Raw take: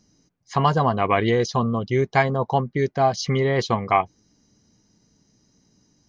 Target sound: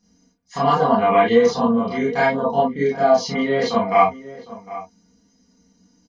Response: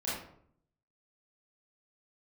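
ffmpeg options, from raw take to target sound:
-filter_complex "[0:a]aecho=1:1:4.2:0.8,asplit=2[a][b];[b]adelay=758,volume=-16dB,highshelf=f=4k:g=-17.1[c];[a][c]amix=inputs=2:normalize=0[d];[1:a]atrim=start_sample=2205,atrim=end_sample=3969[e];[d][e]afir=irnorm=-1:irlink=0,volume=-4dB"

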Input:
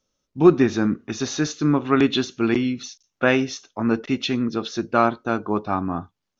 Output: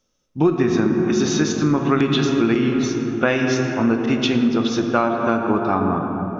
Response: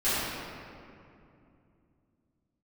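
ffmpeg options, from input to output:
-filter_complex "[0:a]bandreject=f=4.2k:w=19,asplit=2[a][b];[1:a]atrim=start_sample=2205,asetrate=26901,aresample=44100[c];[b][c]afir=irnorm=-1:irlink=0,volume=-20dB[d];[a][d]amix=inputs=2:normalize=0,acompressor=threshold=-17dB:ratio=6,volume=3.5dB"

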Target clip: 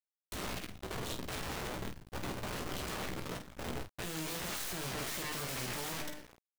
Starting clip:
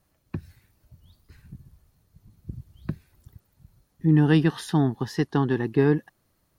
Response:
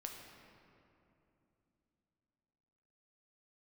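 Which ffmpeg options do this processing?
-filter_complex "[0:a]bandreject=f=141.7:t=h:w=4,bandreject=f=283.4:t=h:w=4,bandreject=f=425.1:t=h:w=4,bandreject=f=566.8:t=h:w=4,bandreject=f=708.5:t=h:w=4,bandreject=f=850.2:t=h:w=4,bandreject=f=991.9:t=h:w=4,bandreject=f=1.1336k:t=h:w=4,bandreject=f=1.2753k:t=h:w=4,bandreject=f=1.417k:t=h:w=4,bandreject=f=1.5587k:t=h:w=4,bandreject=f=1.7004k:t=h:w=4,bandreject=f=1.8421k:t=h:w=4,bandreject=f=1.9838k:t=h:w=4,bandreject=f=2.1255k:t=h:w=4,bandreject=f=2.2672k:t=h:w=4,bandreject=f=2.4089k:t=h:w=4,bandreject=f=2.5506k:t=h:w=4,agate=range=-33dB:threshold=-59dB:ratio=3:detection=peak,lowshelf=f=100:g=7.5,aecho=1:1:1.8:0.55,acrossover=split=140[a][b];[a]alimiter=level_in=5dB:limit=-24dB:level=0:latency=1:release=13,volume=-5dB[c];[c][b]amix=inputs=2:normalize=0,acompressor=threshold=-32dB:ratio=16,aresample=8000,asoftclip=type=tanh:threshold=-38dB,aresample=44100,aeval=exprs='0.02*(cos(1*acos(clip(val(0)/0.02,-1,1)))-cos(1*PI/2))+0.00562*(cos(3*acos(clip(val(0)/0.02,-1,1)))-cos(3*PI/2))+0.000316*(cos(4*acos(clip(val(0)/0.02,-1,1)))-cos(4*PI/2))+0.00141*(cos(7*acos(clip(val(0)/0.02,-1,1)))-cos(7*PI/2))+0.00708*(cos(8*acos(clip(val(0)/0.02,-1,1)))-cos(8*PI/2))':c=same,asetrate=46722,aresample=44100,atempo=0.943874,acrusher=bits=9:mix=0:aa=0.000001,aeval=exprs='(mod(150*val(0)+1,2)-1)/150':c=same,aecho=1:1:16|50:0.501|0.447,volume=9dB"

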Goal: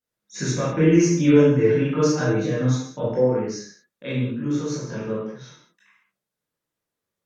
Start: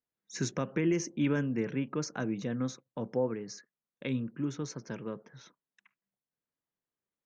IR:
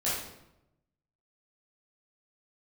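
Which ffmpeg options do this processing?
-filter_complex "[0:a]asettb=1/sr,asplit=3[a][b][c];[a]atrim=end=0.764[d];[b]atrim=start=0.76:end=3.02,asetpts=PTS-STARTPTS,afade=t=in:d=0.004:c=qsin,afade=t=out:st=2.256:d=0.004:c=qsin,aecho=1:1:6.6:0.92,atrim=end_sample=99666[e];[c]atrim=start=3.016[f];[d][e]acrossfade=d=0.004:c1=hsin:c2=qsin[g];[g][f]acrossfade=d=0.004:c1=qsin:c2=hsin[h];[1:a]atrim=start_sample=2205,afade=t=out:st=0.25:d=0.01,atrim=end_sample=11466,asetrate=36162,aresample=44100[i];[h][i]afir=irnorm=-1:irlink=0"

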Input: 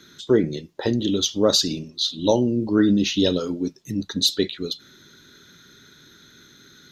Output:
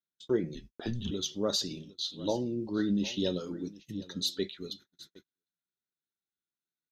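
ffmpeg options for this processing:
-filter_complex "[0:a]aecho=1:1:756:0.119,flanger=delay=5:depth=1.2:regen=71:speed=0.66:shape=triangular,asplit=3[a][b][c];[a]afade=t=out:st=0.54:d=0.02[d];[b]afreqshift=-120,afade=t=in:st=0.54:d=0.02,afade=t=out:st=1.1:d=0.02[e];[c]afade=t=in:st=1.1:d=0.02[f];[d][e][f]amix=inputs=3:normalize=0,agate=range=-40dB:threshold=-42dB:ratio=16:detection=peak,volume=-7.5dB"

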